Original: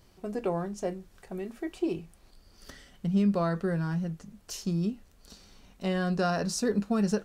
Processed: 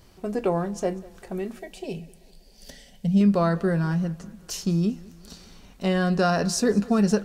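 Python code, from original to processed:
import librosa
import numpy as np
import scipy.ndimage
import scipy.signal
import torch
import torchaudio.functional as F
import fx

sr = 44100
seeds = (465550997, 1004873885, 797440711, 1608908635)

y = fx.fixed_phaser(x, sr, hz=330.0, stages=6, at=(1.59, 3.21))
y = fx.echo_feedback(y, sr, ms=195, feedback_pct=54, wet_db=-22)
y = y * 10.0 ** (6.0 / 20.0)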